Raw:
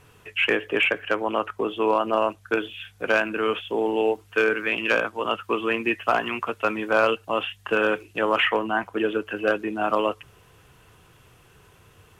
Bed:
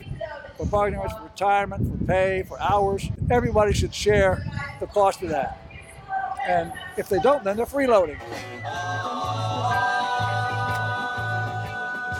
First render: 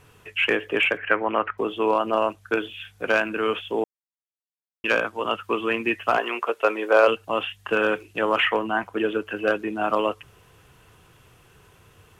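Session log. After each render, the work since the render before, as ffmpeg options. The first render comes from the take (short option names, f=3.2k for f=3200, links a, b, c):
-filter_complex "[0:a]asettb=1/sr,asplit=3[a][b][c];[a]atrim=end=0.974[d];[b]atrim=start=0.97:end=1.58,asetpts=PTS-STARTPTS,afade=t=in:d=0.004:c=qsin,afade=t=out:st=0.606:d=0.004:c=qsin,lowpass=f=2k:t=q:w=2.6[e];[c]atrim=start=1.576[f];[d][e]acrossfade=d=0.004:c1=hsin:c2=qsin[g];[g][f]acrossfade=d=0.004:c1=qsin:c2=hsin,asettb=1/sr,asplit=3[h][i][j];[h]atrim=end=6.174[k];[i]atrim=start=6.17:end=7.08,asetpts=PTS-STARTPTS,afade=t=in:d=0.004:c=qsin,afade=t=out:st=0.906:d=0.004:c=qsin,highpass=f=440:t=q:w=1.9[l];[j]atrim=start=7.076[m];[k][l]acrossfade=d=0.004:c1=hsin:c2=qsin[n];[n][m]acrossfade=d=0.004:c1=qsin:c2=hsin,asplit=3[o][p][q];[o]atrim=end=3.84,asetpts=PTS-STARTPTS,afade=t=out:st=3.836:d=0.004:c=hsin[r];[p]atrim=start=3.84:end=4.84,asetpts=PTS-STARTPTS,volume=0[s];[q]atrim=start=4.84,asetpts=PTS-STARTPTS,afade=t=in:d=0.004:c=hsin[t];[r][s][t]concat=n=3:v=0:a=1"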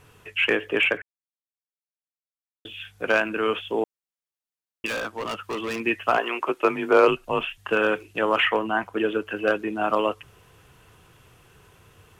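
-filter_complex "[0:a]asettb=1/sr,asplit=3[a][b][c];[a]atrim=end=4.864[d];[b]atrim=start=4.86:end=5.8,asetpts=PTS-STARTPTS,afade=t=in:d=0.004:c=qsin,afade=t=out:st=0.936:d=0.004:c=qsin,volume=26dB,asoftclip=hard,volume=-26dB[e];[c]atrim=start=5.796[f];[d][e]acrossfade=d=0.004:c1=hsin:c2=qsin[g];[g][f]acrossfade=d=0.004:c1=qsin:c2=hsin,asettb=1/sr,asplit=3[h][i][j];[h]atrim=end=6.404[k];[i]atrim=start=6.4:end=7.58,asetpts=PTS-STARTPTS,afade=t=in:d=0.004:c=qsin,afade=t=out:st=1.176:d=0.004:c=qsin,afreqshift=-79[l];[j]atrim=start=7.576[m];[k][l]acrossfade=d=0.004:c1=hsin:c2=qsin[n];[n][m]acrossfade=d=0.004:c1=qsin:c2=hsin,asplit=3[o][p][q];[o]atrim=end=1.02,asetpts=PTS-STARTPTS,afade=t=out:st=1.016:d=0.004:c=hsin[r];[p]atrim=start=1.02:end=2.65,asetpts=PTS-STARTPTS,volume=0[s];[q]atrim=start=2.65,asetpts=PTS-STARTPTS,afade=t=in:d=0.004:c=hsin[t];[r][s][t]concat=n=3:v=0:a=1"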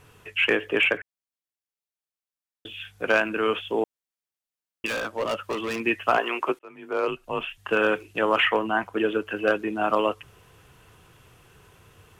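-filter_complex "[0:a]asettb=1/sr,asplit=3[a][b][c];[a]atrim=end=5.084[d];[b]atrim=start=5.08:end=5.53,asetpts=PTS-STARTPTS,afade=t=in:d=0.004:c=qsin,afade=t=out:st=0.446:d=0.004:c=qsin,equalizer=f=570:w=4.3:g=12[e];[c]atrim=start=5.526[f];[d][e]acrossfade=d=0.004:c1=hsin:c2=qsin[g];[g][f]acrossfade=d=0.004:c1=qsin:c2=hsin,asplit=2[h][i];[h]atrim=end=6.59,asetpts=PTS-STARTPTS,afade=t=out:st=6.586:d=0.004:c=hsin[j];[i]atrim=start=6.59,asetpts=PTS-STARTPTS,afade=t=in:d=1.23[k];[j][k]concat=n=2:v=0:a=1"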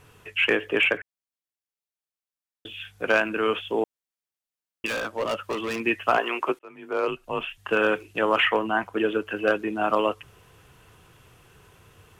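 -af anull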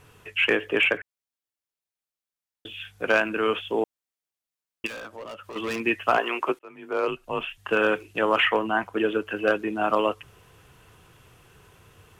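-filter_complex "[0:a]asettb=1/sr,asplit=3[a][b][c];[a]atrim=end=4.874[d];[b]atrim=start=4.87:end=5.56,asetpts=PTS-STARTPTS,afade=t=in:d=0.004:c=qsin,afade=t=out:st=0.686:d=0.004:c=qsin,acompressor=threshold=-41dB:ratio=2.5:attack=3.2:release=140:knee=1:detection=peak[e];[c]atrim=start=5.556[f];[d][e]acrossfade=d=0.004:c1=hsin:c2=qsin[g];[g][f]acrossfade=d=0.004:c1=qsin:c2=hsin"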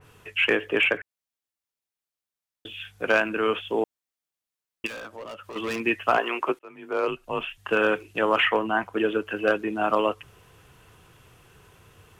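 -af "adynamicequalizer=threshold=0.0224:dfrequency=2900:dqfactor=0.7:tfrequency=2900:tqfactor=0.7:attack=5:release=100:ratio=0.375:range=1.5:mode=cutabove:tftype=highshelf"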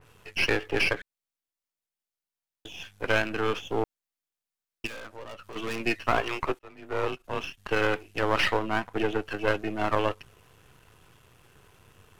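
-af "aeval=exprs='if(lt(val(0),0),0.251*val(0),val(0))':c=same"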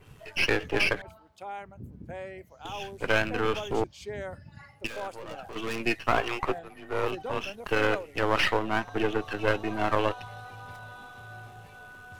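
-filter_complex "[1:a]volume=-18.5dB[a];[0:a][a]amix=inputs=2:normalize=0"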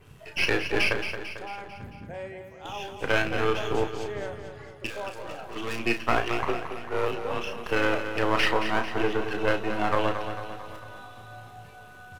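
-filter_complex "[0:a]asplit=2[a][b];[b]adelay=34,volume=-7.5dB[c];[a][c]amix=inputs=2:normalize=0,asplit=2[d][e];[e]aecho=0:1:223|446|669|892|1115|1338:0.355|0.195|0.107|0.059|0.0325|0.0179[f];[d][f]amix=inputs=2:normalize=0"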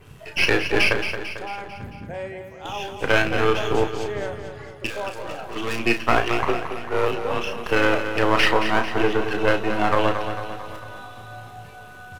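-af "volume=5.5dB,alimiter=limit=-3dB:level=0:latency=1"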